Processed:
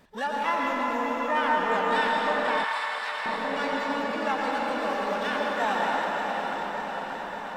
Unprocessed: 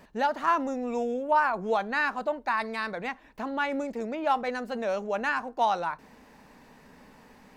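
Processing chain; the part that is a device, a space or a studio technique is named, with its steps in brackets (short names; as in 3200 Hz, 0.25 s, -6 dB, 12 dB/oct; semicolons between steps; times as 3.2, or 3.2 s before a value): regenerating reverse delay 0.292 s, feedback 85%, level -8 dB; shimmer-style reverb (harmoniser +12 st -7 dB; reverb RT60 4.8 s, pre-delay 98 ms, DRR -2.5 dB); 2.64–3.26 HPF 990 Hz 12 dB/oct; gain -5 dB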